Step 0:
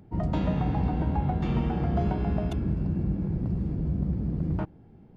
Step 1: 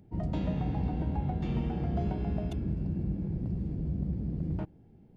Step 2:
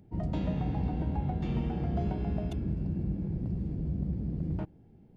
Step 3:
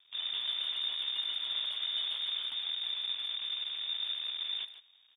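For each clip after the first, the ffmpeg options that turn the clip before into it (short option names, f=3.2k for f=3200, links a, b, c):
-af "equalizer=f=1.2k:w=1.3:g=-7,volume=-4.5dB"
-af anull
-filter_complex "[0:a]acrusher=bits=7:dc=4:mix=0:aa=0.000001,lowpass=f=3.1k:t=q:w=0.5098,lowpass=f=3.1k:t=q:w=0.6013,lowpass=f=3.1k:t=q:w=0.9,lowpass=f=3.1k:t=q:w=2.563,afreqshift=-3700,asplit=2[a][b];[b]adelay=150,highpass=300,lowpass=3.4k,asoftclip=type=hard:threshold=-28.5dB,volume=-11dB[c];[a][c]amix=inputs=2:normalize=0,volume=-5dB"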